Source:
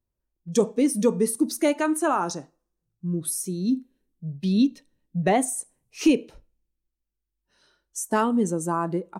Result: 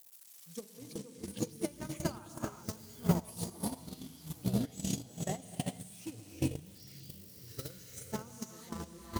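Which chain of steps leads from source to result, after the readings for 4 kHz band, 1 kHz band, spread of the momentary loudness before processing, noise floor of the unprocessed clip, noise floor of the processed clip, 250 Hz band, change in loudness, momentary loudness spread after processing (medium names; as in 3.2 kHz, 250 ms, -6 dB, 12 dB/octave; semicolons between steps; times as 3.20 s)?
-8.5 dB, -18.0 dB, 12 LU, -83 dBFS, -56 dBFS, -14.5 dB, -15.0 dB, 13 LU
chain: zero-crossing glitches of -26.5 dBFS; gated-style reverb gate 430 ms rising, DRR 0.5 dB; in parallel at +1 dB: gain riding within 3 dB 0.5 s; on the sum: dynamic bell 200 Hz, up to +5 dB, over -26 dBFS, Q 1.9; high-pass 71 Hz 12 dB/octave; saturation -0.5 dBFS, distortion -26 dB; hum notches 60/120/180/240/300/360/420 Hz; compression 12:1, threshold -22 dBFS, peak gain reduction 16.5 dB; ever faster or slower copies 126 ms, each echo -6 st, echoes 3; on a send: echo that smears into a reverb 583 ms, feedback 48%, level -14 dB; on the sum: gate -17 dBFS, range -37 dB; trim +9.5 dB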